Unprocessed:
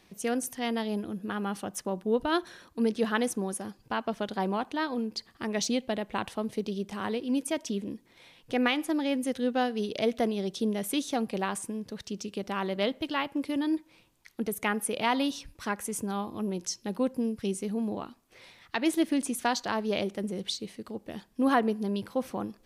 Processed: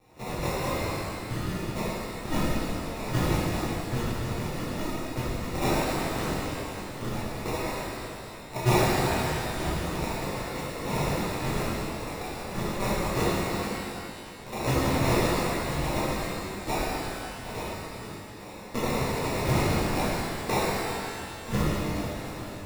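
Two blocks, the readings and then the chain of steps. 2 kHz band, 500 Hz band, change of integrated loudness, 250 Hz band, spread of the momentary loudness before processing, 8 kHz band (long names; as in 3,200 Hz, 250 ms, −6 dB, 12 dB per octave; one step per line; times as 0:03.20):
+2.5 dB, +0.5 dB, +1.5 dB, −2.0 dB, 9 LU, +1.0 dB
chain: Chebyshev band-stop filter 120–1,300 Hz, order 4
decimation without filtering 28×
reverb with rising layers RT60 2.3 s, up +12 semitones, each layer −8 dB, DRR −11.5 dB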